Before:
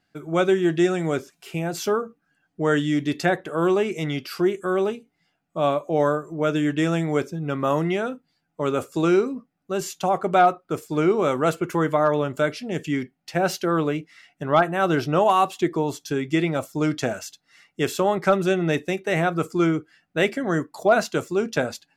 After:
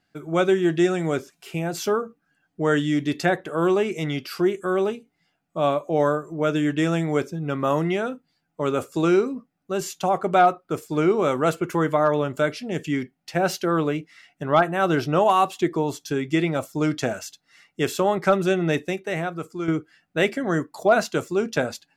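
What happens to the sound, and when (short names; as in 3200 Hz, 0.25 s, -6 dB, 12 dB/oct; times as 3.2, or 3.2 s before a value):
18.81–19.68 fade out quadratic, to -9 dB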